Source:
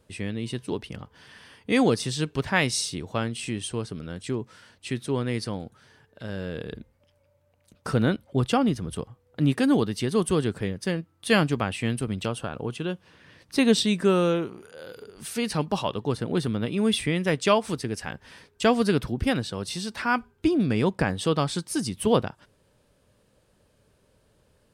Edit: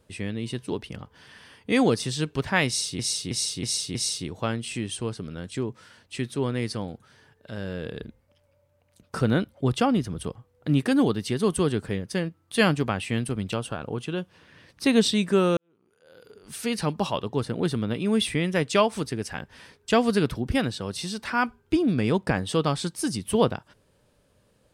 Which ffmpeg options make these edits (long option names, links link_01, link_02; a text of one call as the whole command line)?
ffmpeg -i in.wav -filter_complex "[0:a]asplit=6[link_01][link_02][link_03][link_04][link_05][link_06];[link_01]atrim=end=2.992[link_07];[link_02]atrim=start=2.668:end=2.992[link_08];[link_03]atrim=start=2.668:end=2.992[link_09];[link_04]atrim=start=2.668:end=2.992[link_10];[link_05]atrim=start=2.668:end=14.29,asetpts=PTS-STARTPTS,afade=type=out:start_time=11.618:duration=0.004:curve=hsin[link_11];[link_06]atrim=start=14.29,asetpts=PTS-STARTPTS,afade=type=in:duration=1.05:curve=qua[link_12];[link_07][link_08]acrossfade=duration=0.004:curve1=hsin:curve2=hsin[link_13];[link_13][link_09]acrossfade=duration=0.004:curve1=hsin:curve2=hsin[link_14];[link_14][link_10]acrossfade=duration=0.004:curve1=hsin:curve2=hsin[link_15];[link_11][link_12]concat=n=2:v=0:a=1[link_16];[link_15][link_16]acrossfade=duration=0.004:curve1=hsin:curve2=hsin" out.wav